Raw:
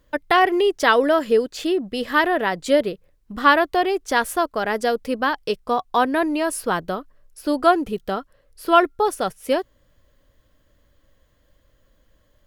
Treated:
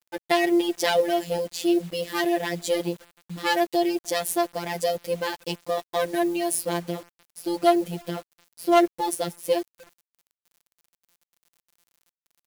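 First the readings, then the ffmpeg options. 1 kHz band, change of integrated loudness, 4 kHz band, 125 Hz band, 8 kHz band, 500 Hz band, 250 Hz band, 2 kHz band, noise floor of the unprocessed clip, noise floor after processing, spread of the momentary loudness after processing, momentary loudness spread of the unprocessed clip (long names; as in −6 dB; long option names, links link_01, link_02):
−7.5 dB, −4.5 dB, −2.5 dB, +3.0 dB, +3.0 dB, −4.0 dB, −2.0 dB, −8.5 dB, −62 dBFS, below −85 dBFS, 12 LU, 12 LU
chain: -filter_complex "[0:a]aeval=exprs='if(lt(val(0),0),0.447*val(0),val(0))':channel_layout=same,highpass=frequency=89:width=0.5412,highpass=frequency=89:width=1.3066,equalizer=frequency=1300:width_type=o:width=0.98:gain=-15,acontrast=36,asplit=2[link_01][link_02];[link_02]adelay=300,highpass=300,lowpass=3400,asoftclip=type=hard:threshold=-14.5dB,volume=-28dB[link_03];[link_01][link_03]amix=inputs=2:normalize=0,afftfilt=real='hypot(re,im)*cos(PI*b)':imag='0':win_size=1024:overlap=0.75,acrusher=bits=7:mix=0:aa=0.000001,adynamicequalizer=threshold=0.00891:dfrequency=5500:dqfactor=0.7:tfrequency=5500:tqfactor=0.7:attack=5:release=100:ratio=0.375:range=2:mode=boostabove:tftype=highshelf"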